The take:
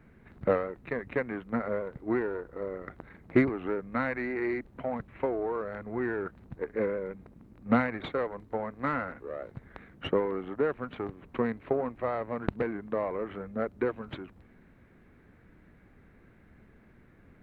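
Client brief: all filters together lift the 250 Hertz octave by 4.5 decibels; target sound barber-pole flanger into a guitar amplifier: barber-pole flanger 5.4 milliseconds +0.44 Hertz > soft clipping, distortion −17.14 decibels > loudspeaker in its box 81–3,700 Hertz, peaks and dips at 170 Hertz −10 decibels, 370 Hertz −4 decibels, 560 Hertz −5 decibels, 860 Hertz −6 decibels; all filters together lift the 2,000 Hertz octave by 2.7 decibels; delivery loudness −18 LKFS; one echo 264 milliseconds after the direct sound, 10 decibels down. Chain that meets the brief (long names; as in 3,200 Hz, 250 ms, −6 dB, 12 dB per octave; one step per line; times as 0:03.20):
parametric band 250 Hz +7.5 dB
parametric band 2,000 Hz +3.5 dB
single-tap delay 264 ms −10 dB
barber-pole flanger 5.4 ms +0.44 Hz
soft clipping −19.5 dBFS
loudspeaker in its box 81–3,700 Hz, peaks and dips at 170 Hz −10 dB, 370 Hz −4 dB, 560 Hz −5 dB, 860 Hz −6 dB
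level +17.5 dB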